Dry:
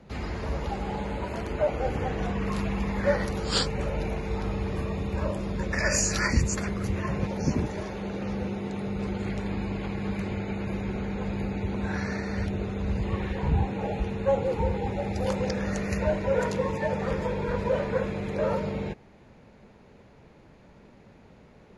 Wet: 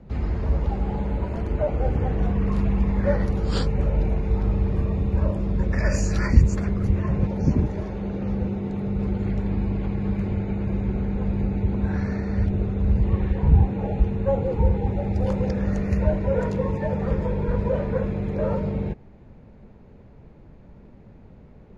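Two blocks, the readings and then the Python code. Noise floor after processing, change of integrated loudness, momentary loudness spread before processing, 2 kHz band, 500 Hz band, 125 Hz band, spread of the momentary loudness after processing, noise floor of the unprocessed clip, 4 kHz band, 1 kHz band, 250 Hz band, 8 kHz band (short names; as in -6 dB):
-48 dBFS, +5.0 dB, 6 LU, -4.5 dB, +1.0 dB, +8.0 dB, 5 LU, -54 dBFS, n/a, -1.5 dB, +5.0 dB, -10.0 dB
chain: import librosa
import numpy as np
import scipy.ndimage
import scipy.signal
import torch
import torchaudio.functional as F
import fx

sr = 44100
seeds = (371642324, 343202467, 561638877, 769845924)

y = fx.tilt_eq(x, sr, slope=-3.0)
y = F.gain(torch.from_numpy(y), -2.0).numpy()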